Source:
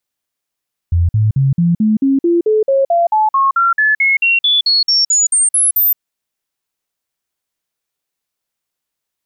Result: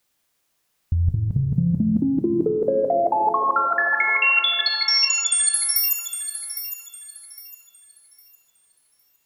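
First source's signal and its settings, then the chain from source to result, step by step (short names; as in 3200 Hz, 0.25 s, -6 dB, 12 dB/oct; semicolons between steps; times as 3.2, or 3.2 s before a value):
stepped sine 85.6 Hz up, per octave 3, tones 23, 0.17 s, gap 0.05 s -9 dBFS
negative-ratio compressor -18 dBFS, ratio -0.5; on a send: thinning echo 0.808 s, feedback 29%, high-pass 530 Hz, level -10 dB; on the sum: plate-style reverb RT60 3.1 s, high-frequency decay 0.45×, DRR 5 dB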